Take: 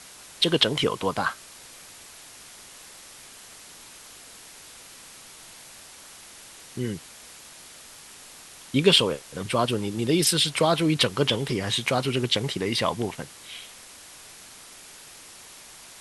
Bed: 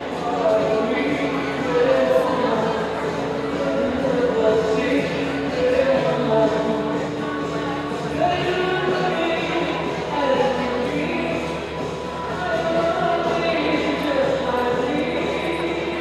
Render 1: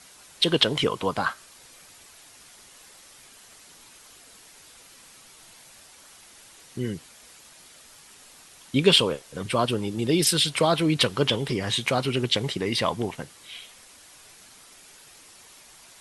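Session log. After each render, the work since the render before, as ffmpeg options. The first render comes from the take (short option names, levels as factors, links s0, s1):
-af "afftdn=nr=6:nf=-47"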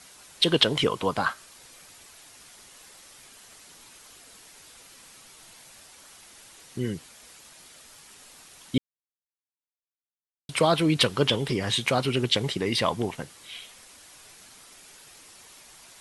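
-filter_complex "[0:a]asplit=3[s0][s1][s2];[s0]atrim=end=8.78,asetpts=PTS-STARTPTS,afade=t=out:st=8.776:d=0.004:c=hsin[s3];[s1]atrim=start=8.78:end=10.49,asetpts=PTS-STARTPTS,volume=0[s4];[s2]atrim=start=10.49,asetpts=PTS-STARTPTS,afade=t=in:d=0.004:c=hsin[s5];[s3][s4][s5]concat=n=3:v=0:a=1"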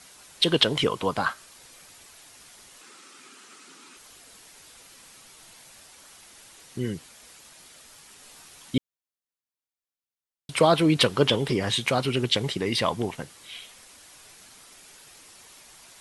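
-filter_complex "[0:a]asettb=1/sr,asplit=3[s0][s1][s2];[s0]atrim=end=2.814[s3];[s1]atrim=start=2.81:end=3.97,asetpts=PTS-STARTPTS,afade=t=in:d=0.004:c=qsin,afade=t=out:st=1.156:d=0.004:c=qsin,highpass=f=160:w=0.5412,highpass=f=160:w=1.3066,equalizer=f=260:t=q:w=4:g=9,equalizer=f=370:t=q:w=4:g=8,equalizer=f=640:t=q:w=4:g=-6,equalizer=f=1300:t=q:w=4:g=10,equalizer=f=2500:t=q:w=4:g=4,lowpass=f=9700:w=0.5412,lowpass=f=9700:w=1.3066[s4];[s2]atrim=start=3.966[s5];[s3][s4]acrossfade=d=0.004:c1=hsin:c2=qsin[s6];[s6][s5]acrossfade=d=0.004:c1=qsin:c2=hsin,asettb=1/sr,asplit=3[s7][s8][s9];[s7]atrim=end=8.224[s10];[s8]atrim=start=8.22:end=8.74,asetpts=PTS-STARTPTS,afade=t=in:d=0.004:c=qsin,afade=t=out:st=0.516:d=0.004:c=qsin,asplit=2[s11][s12];[s12]adelay=14,volume=0.531[s13];[s11][s13]amix=inputs=2:normalize=0,atrim=end_sample=22932[s14];[s9]atrim=start=8.736[s15];[s10][s14]acrossfade=d=0.004:c1=hsin:c2=qsin[s16];[s16][s15]acrossfade=d=0.004:c1=qsin:c2=hsin,asettb=1/sr,asplit=3[s17][s18][s19];[s17]atrim=end=10.584[s20];[s18]atrim=start=10.58:end=11.69,asetpts=PTS-STARTPTS,afade=t=in:d=0.004:c=qsin,afade=t=out:st=1.106:d=0.004:c=qsin,equalizer=f=520:t=o:w=3:g=3[s21];[s19]atrim=start=11.686[s22];[s20][s21]acrossfade=d=0.004:c1=hsin:c2=qsin[s23];[s23][s22]acrossfade=d=0.004:c1=qsin:c2=hsin"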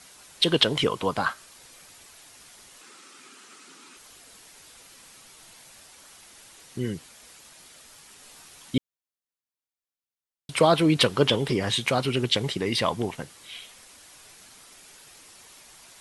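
-af anull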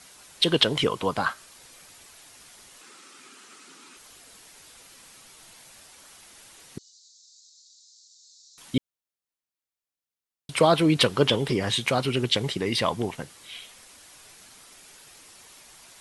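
-filter_complex "[0:a]asettb=1/sr,asplit=3[s0][s1][s2];[s0]atrim=end=6.784[s3];[s1]atrim=start=6.78:end=8.58,asetpts=PTS-STARTPTS,afade=t=in:d=0.004:c=qsin,afade=t=out:st=1.796:d=0.004:c=qsin,asuperpass=centerf=5400:order=12:qfactor=1.5[s4];[s2]atrim=start=8.576[s5];[s3][s4]acrossfade=d=0.004:c1=hsin:c2=qsin[s6];[s6][s5]acrossfade=d=0.004:c1=qsin:c2=hsin"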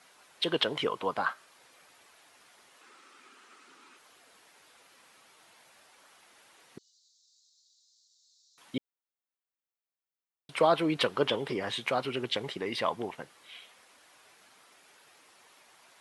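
-af "highpass=f=700:p=1,equalizer=f=8700:w=0.32:g=-14.5"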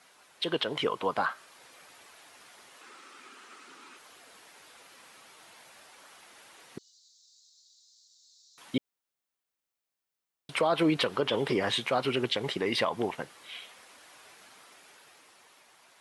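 -af "dynaudnorm=f=140:g=17:m=1.88,alimiter=limit=0.141:level=0:latency=1:release=91"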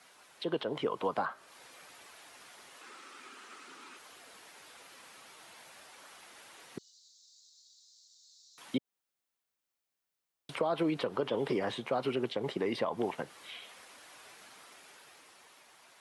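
-filter_complex "[0:a]acrossover=split=130|1100[s0][s1][s2];[s0]acompressor=threshold=0.00126:ratio=4[s3];[s1]acompressor=threshold=0.0398:ratio=4[s4];[s2]acompressor=threshold=0.00631:ratio=4[s5];[s3][s4][s5]amix=inputs=3:normalize=0"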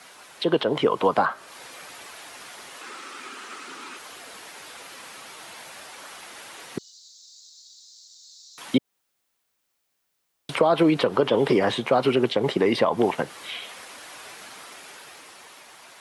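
-af "volume=3.98"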